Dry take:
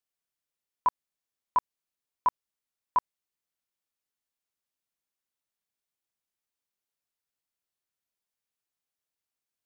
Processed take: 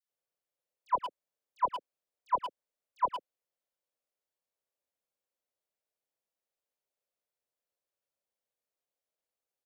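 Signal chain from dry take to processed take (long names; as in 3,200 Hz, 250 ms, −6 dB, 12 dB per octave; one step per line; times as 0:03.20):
parametric band 550 Hz +14 dB 0.94 octaves
all-pass dispersion lows, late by 98 ms, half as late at 1,500 Hz
far-end echo of a speakerphone 110 ms, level −6 dB
level −6 dB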